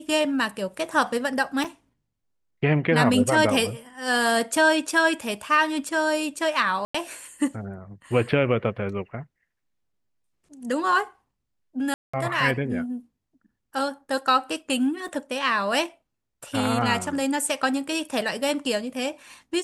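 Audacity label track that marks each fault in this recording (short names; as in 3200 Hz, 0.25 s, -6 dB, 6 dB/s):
1.640000	1.640000	gap 4 ms
6.850000	6.950000	gap 95 ms
11.940000	12.130000	gap 0.195 s
15.080000	15.080000	gap 3.9 ms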